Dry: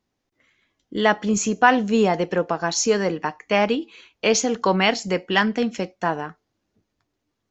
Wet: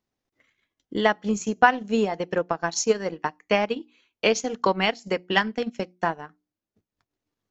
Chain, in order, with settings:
mains-hum notches 60/120/180/240/300/360 Hz
transient designer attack +7 dB, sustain −10 dB
level −6 dB

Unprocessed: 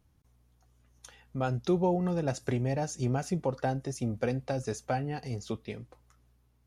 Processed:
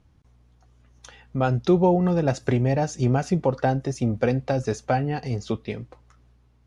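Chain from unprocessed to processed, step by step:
high-frequency loss of the air 78 metres
level +8.5 dB

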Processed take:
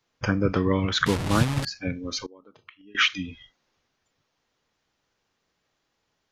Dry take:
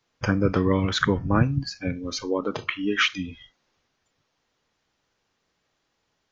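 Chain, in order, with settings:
0:01.06–0:01.65: linear delta modulator 64 kbit/s, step −21.5 dBFS
dynamic equaliser 3,200 Hz, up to +3 dB, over −40 dBFS, Q 0.9
0:02.25–0:02.95: gate with flip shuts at −23 dBFS, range −24 dB
level −1.5 dB

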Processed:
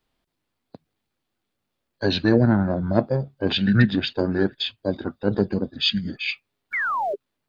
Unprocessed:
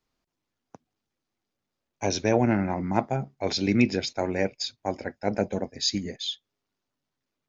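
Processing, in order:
sound drawn into the spectrogram fall, 0:06.73–0:07.15, 540–2,300 Hz −29 dBFS
formants moved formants −6 semitones
level +5 dB

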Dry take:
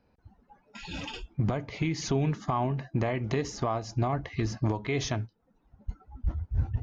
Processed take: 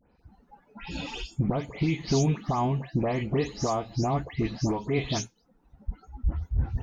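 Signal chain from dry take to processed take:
every frequency bin delayed by itself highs late, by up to 187 ms
dynamic equaliser 1,600 Hz, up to −6 dB, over −51 dBFS, Q 1.7
level +3.5 dB

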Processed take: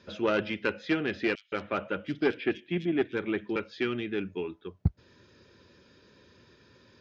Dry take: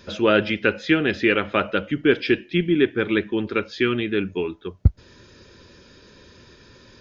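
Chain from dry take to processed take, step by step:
harmonic generator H 2 −8 dB, 8 −36 dB, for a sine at −3 dBFS
high-pass filter 78 Hz
high-frequency loss of the air 74 metres
0:01.35–0:03.56: multiband delay without the direct sound highs, lows 170 ms, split 3,600 Hz
level −8.5 dB

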